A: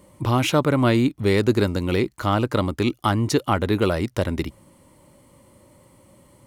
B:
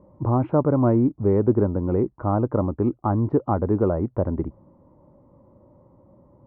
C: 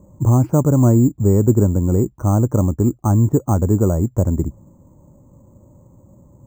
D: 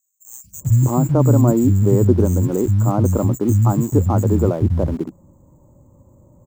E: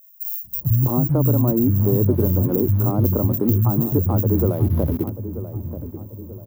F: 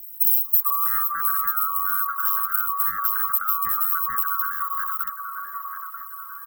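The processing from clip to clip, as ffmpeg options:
ffmpeg -i in.wav -af "lowpass=frequency=1000:width=0.5412,lowpass=frequency=1000:width=1.3066" out.wav
ffmpeg -i in.wav -af "bass=frequency=250:gain=10,treble=frequency=4000:gain=-2,acrusher=samples=6:mix=1:aa=0.000001" out.wav
ffmpeg -i in.wav -filter_complex "[0:a]acrossover=split=190|4000[link_01][link_02][link_03];[link_01]adelay=440[link_04];[link_02]adelay=610[link_05];[link_04][link_05][link_03]amix=inputs=3:normalize=0,asplit=2[link_06][link_07];[link_07]aeval=exprs='val(0)*gte(abs(val(0)),0.0447)':channel_layout=same,volume=-10dB[link_08];[link_06][link_08]amix=inputs=2:normalize=0,volume=-1dB" out.wav
ffmpeg -i in.wav -filter_complex "[0:a]acrossover=split=490|1700[link_01][link_02][link_03];[link_01]acompressor=threshold=-15dB:ratio=4[link_04];[link_02]acompressor=threshold=-30dB:ratio=4[link_05];[link_03]acompressor=threshold=-50dB:ratio=4[link_06];[link_04][link_05][link_06]amix=inputs=3:normalize=0,aexciter=amount=14.3:drive=7.4:freq=11000,asplit=2[link_07][link_08];[link_08]adelay=936,lowpass=frequency=990:poles=1,volume=-11dB,asplit=2[link_09][link_10];[link_10]adelay=936,lowpass=frequency=990:poles=1,volume=0.47,asplit=2[link_11][link_12];[link_12]adelay=936,lowpass=frequency=990:poles=1,volume=0.47,asplit=2[link_13][link_14];[link_14]adelay=936,lowpass=frequency=990:poles=1,volume=0.47,asplit=2[link_15][link_16];[link_16]adelay=936,lowpass=frequency=990:poles=1,volume=0.47[link_17];[link_07][link_09][link_11][link_13][link_15][link_17]amix=inputs=6:normalize=0" out.wav
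ffmpeg -i in.wav -af "afftfilt=real='real(if(lt(b,960),b+48*(1-2*mod(floor(b/48),2)),b),0)':imag='imag(if(lt(b,960),b+48*(1-2*mod(floor(b/48),2)),b),0)':win_size=2048:overlap=0.75,acompressor=threshold=-23dB:ratio=2.5,aemphasis=mode=production:type=50fm,volume=-5dB" out.wav

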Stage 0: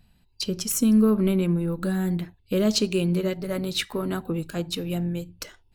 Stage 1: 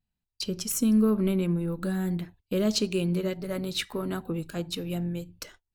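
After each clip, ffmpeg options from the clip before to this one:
ffmpeg -i in.wav -af "agate=range=-21dB:threshold=-48dB:ratio=16:detection=peak,volume=-3.5dB" out.wav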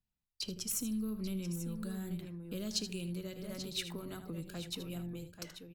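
ffmpeg -i in.wav -filter_complex "[0:a]asplit=2[link_01][link_02];[link_02]aecho=0:1:78|837:0.251|0.266[link_03];[link_01][link_03]amix=inputs=2:normalize=0,acrossover=split=150|3000[link_04][link_05][link_06];[link_05]acompressor=threshold=-37dB:ratio=6[link_07];[link_04][link_07][link_06]amix=inputs=3:normalize=0,volume=-6dB" out.wav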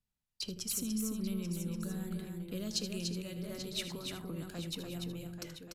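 ffmpeg -i in.wav -filter_complex "[0:a]asplit=2[link_01][link_02];[link_02]aecho=0:1:292:0.562[link_03];[link_01][link_03]amix=inputs=2:normalize=0,aresample=32000,aresample=44100" out.wav

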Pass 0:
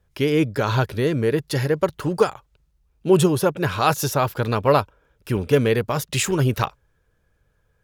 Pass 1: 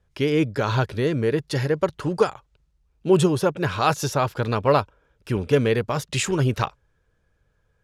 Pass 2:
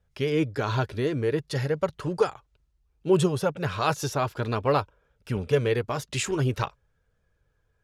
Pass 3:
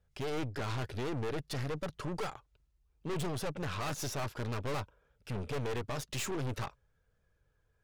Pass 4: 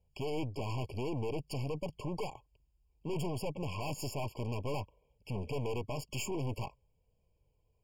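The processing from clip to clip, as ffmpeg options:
ffmpeg -i in.wav -af "lowpass=8600,volume=-1.5dB" out.wav
ffmpeg -i in.wav -af "flanger=delay=1.4:depth=1.6:regen=-61:speed=0.57:shape=sinusoidal" out.wav
ffmpeg -i in.wav -af "aeval=exprs='(tanh(50.1*val(0)+0.65)-tanh(0.65))/50.1':channel_layout=same" out.wav
ffmpeg -i in.wav -af "afftfilt=real='re*eq(mod(floor(b*sr/1024/1100),2),0)':imag='im*eq(mod(floor(b*sr/1024/1100),2),0)':win_size=1024:overlap=0.75" out.wav

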